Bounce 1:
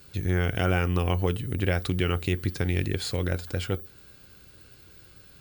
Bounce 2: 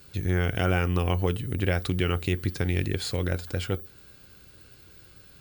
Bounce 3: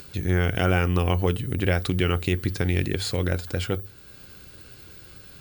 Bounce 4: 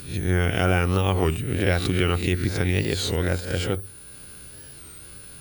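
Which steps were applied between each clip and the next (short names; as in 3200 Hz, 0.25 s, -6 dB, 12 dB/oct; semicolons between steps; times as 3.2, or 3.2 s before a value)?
nothing audible
notches 50/100 Hz; upward compressor, threshold -42 dBFS; gain +3 dB
spectral swells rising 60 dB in 0.46 s; whine 9700 Hz -45 dBFS; record warp 33 1/3 rpm, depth 160 cents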